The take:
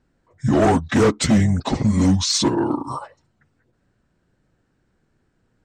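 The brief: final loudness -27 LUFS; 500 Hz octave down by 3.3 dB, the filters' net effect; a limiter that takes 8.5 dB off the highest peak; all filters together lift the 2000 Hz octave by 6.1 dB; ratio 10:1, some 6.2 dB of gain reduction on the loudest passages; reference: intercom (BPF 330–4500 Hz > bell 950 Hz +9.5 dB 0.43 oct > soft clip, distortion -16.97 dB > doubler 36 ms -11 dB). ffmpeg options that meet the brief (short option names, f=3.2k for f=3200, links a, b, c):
-filter_complex "[0:a]equalizer=f=500:t=o:g=-4,equalizer=f=2k:t=o:g=7,acompressor=threshold=-19dB:ratio=10,alimiter=limit=-19.5dB:level=0:latency=1,highpass=330,lowpass=4.5k,equalizer=f=950:t=o:w=0.43:g=9.5,asoftclip=threshold=-20dB,asplit=2[a][b];[b]adelay=36,volume=-11dB[c];[a][c]amix=inputs=2:normalize=0,volume=3dB"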